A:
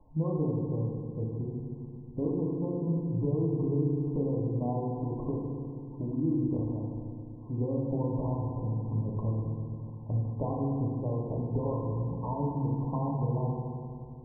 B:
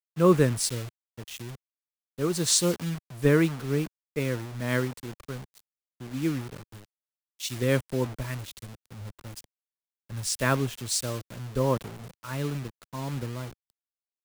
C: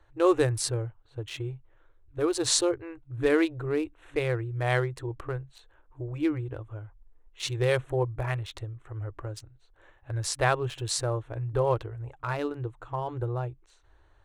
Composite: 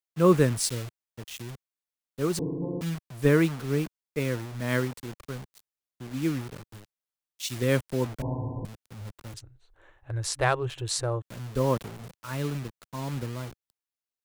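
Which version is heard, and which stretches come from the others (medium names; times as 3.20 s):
B
2.39–2.81 s: from A
8.22–8.65 s: from A
9.34–11.22 s: from C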